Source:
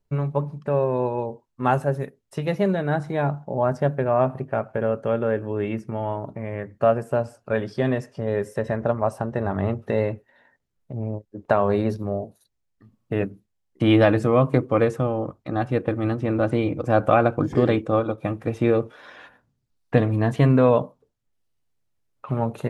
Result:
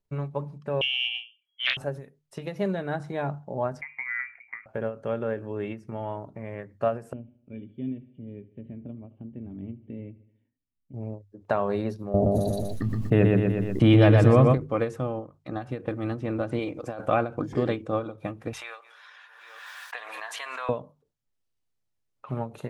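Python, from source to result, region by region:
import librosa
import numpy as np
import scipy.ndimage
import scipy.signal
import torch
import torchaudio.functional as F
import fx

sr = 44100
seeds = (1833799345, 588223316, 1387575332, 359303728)

y = fx.chain(x, sr, fx.peak_eq(hz=810.0, db=-5.0, octaves=0.27),
    fx.freq_invert(carrier_hz=3300),
    fx.doppler_dist(depth_ms=0.41), at=(0.81, 1.77))
y = fx.chain(y, sr, fx.ladder_highpass(hz=240.0, resonance_pct=35),
    fx.freq_invert(carrier_hz=2600), at=(3.81, 4.66))
y = fx.chain(y, sr, fx.formant_cascade(vowel='i'),
    fx.low_shelf(hz=110.0, db=10.5),
    fx.echo_feedback(ms=75, feedback_pct=56, wet_db=-19), at=(7.13, 10.94))
y = fx.chain(y, sr, fx.low_shelf(hz=190.0, db=11.0),
    fx.echo_feedback(ms=121, feedback_pct=32, wet_db=-5.0),
    fx.env_flatten(amount_pct=70), at=(12.14, 14.58))
y = fx.chain(y, sr, fx.bass_treble(bass_db=-9, treble_db=3),
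    fx.over_compress(threshold_db=-26.0, ratio=-1.0), at=(16.59, 17.06))
y = fx.chain(y, sr, fx.highpass(hz=940.0, slope=24),
    fx.echo_feedback(ms=196, feedback_pct=57, wet_db=-23.0),
    fx.pre_swell(db_per_s=30.0), at=(18.53, 20.69))
y = fx.peak_eq(y, sr, hz=4800.0, db=2.5, octaves=1.8)
y = fx.hum_notches(y, sr, base_hz=50, count=3)
y = fx.end_taper(y, sr, db_per_s=180.0)
y = F.gain(torch.from_numpy(y), -6.0).numpy()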